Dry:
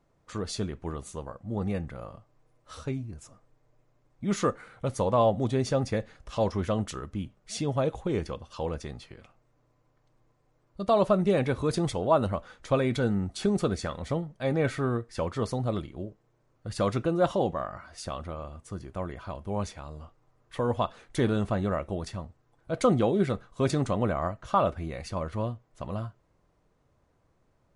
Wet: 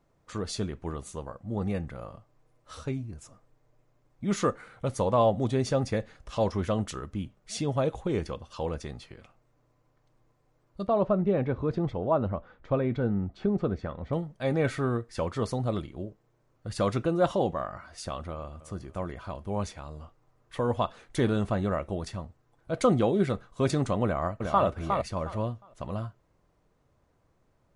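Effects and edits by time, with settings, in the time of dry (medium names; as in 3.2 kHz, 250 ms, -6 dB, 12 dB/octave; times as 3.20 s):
10.87–14.13 s: tape spacing loss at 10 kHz 39 dB
18.31–18.89 s: echo throw 290 ms, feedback 40%, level -16 dB
24.04–24.65 s: echo throw 360 ms, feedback 20%, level -4.5 dB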